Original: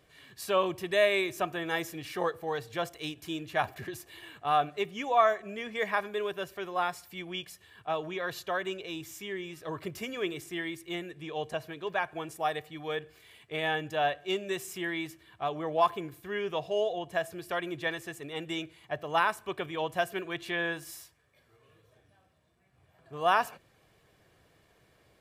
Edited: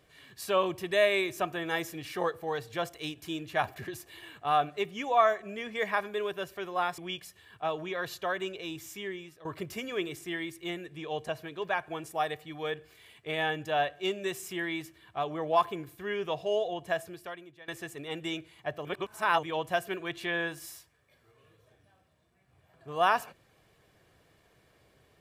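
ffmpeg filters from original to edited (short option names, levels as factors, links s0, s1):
-filter_complex "[0:a]asplit=6[s0][s1][s2][s3][s4][s5];[s0]atrim=end=6.982[s6];[s1]atrim=start=7.228:end=9.7,asetpts=PTS-STARTPTS,afade=t=out:st=2.082:d=0.39:silence=0.149624[s7];[s2]atrim=start=9.7:end=17.93,asetpts=PTS-STARTPTS,afade=t=in:d=0.004:c=hsin:silence=0.149624,afade=t=out:st=7.55:d=0.68:c=qua:silence=0.0944061[s8];[s3]atrim=start=17.93:end=19.102,asetpts=PTS-STARTPTS,afade=t=in:d=0.004:c=hsin:silence=0.0944061[s9];[s4]atrim=start=19.098:end=19.682,asetpts=PTS-STARTPTS,areverse[s10];[s5]atrim=start=19.678[s11];[s7][s8][s9]concat=n=3:v=0:a=1[s12];[s6][s12]acrossfade=d=0.004:c1=hsin:c2=hsin[s13];[s13][s10]acrossfade=d=0.004:c1=hsin:c2=hsin[s14];[s14][s11]acrossfade=d=0.004:c1=hsin:c2=hsin"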